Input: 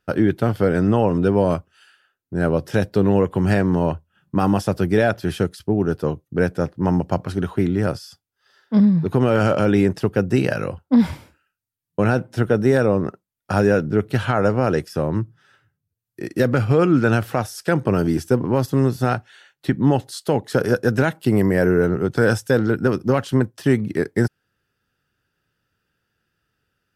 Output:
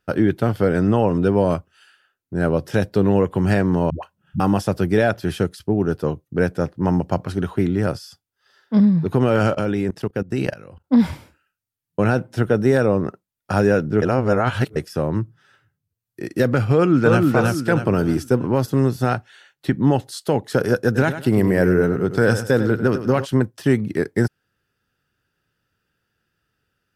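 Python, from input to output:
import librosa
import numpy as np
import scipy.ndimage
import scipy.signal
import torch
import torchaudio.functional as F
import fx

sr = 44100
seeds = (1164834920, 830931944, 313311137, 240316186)

y = fx.dispersion(x, sr, late='highs', ms=123.0, hz=390.0, at=(3.9, 4.4))
y = fx.level_steps(y, sr, step_db=21, at=(9.5, 10.84))
y = fx.echo_throw(y, sr, start_s=16.73, length_s=0.49, ms=320, feedback_pct=40, wet_db=-1.5)
y = fx.echo_feedback(y, sr, ms=99, feedback_pct=31, wet_db=-11.0, at=(20.94, 23.24), fade=0.02)
y = fx.edit(y, sr, fx.reverse_span(start_s=14.02, length_s=0.74), tone=tone)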